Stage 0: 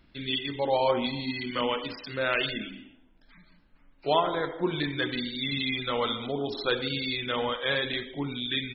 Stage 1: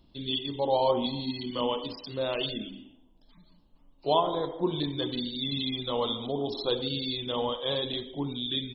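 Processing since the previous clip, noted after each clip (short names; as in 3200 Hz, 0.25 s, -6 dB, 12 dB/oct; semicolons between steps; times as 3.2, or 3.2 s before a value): band shelf 1800 Hz -16 dB 1.1 oct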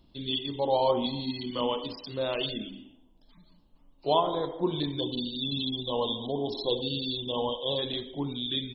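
spectral gain 5–7.78, 1100–2600 Hz -27 dB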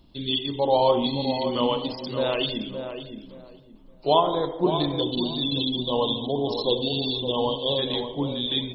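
darkening echo 0.569 s, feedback 24%, low-pass 1400 Hz, level -7.5 dB; gain +5 dB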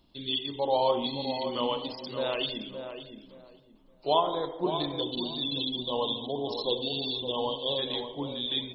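low shelf 300 Hz -7.5 dB; gain -4 dB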